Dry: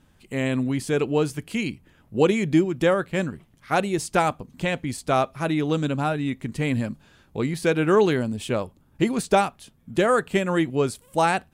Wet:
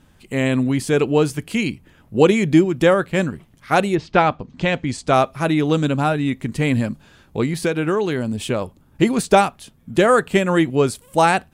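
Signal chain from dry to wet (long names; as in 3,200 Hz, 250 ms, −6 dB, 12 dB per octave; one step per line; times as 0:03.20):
0:03.94–0:05.11: low-pass filter 3,500 Hz → 8,900 Hz 24 dB per octave
0:07.43–0:08.62: downward compressor 6 to 1, threshold −22 dBFS, peak gain reduction 9 dB
level +5.5 dB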